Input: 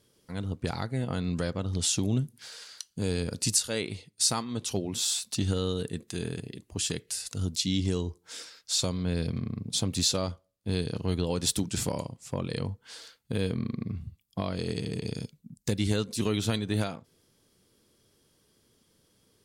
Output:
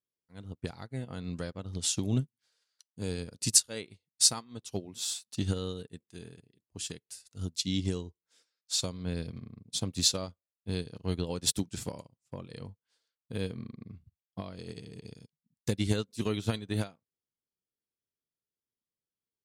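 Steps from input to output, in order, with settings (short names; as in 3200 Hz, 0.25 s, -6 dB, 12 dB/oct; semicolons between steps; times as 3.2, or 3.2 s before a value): upward expander 2.5:1, over -47 dBFS; gain +5 dB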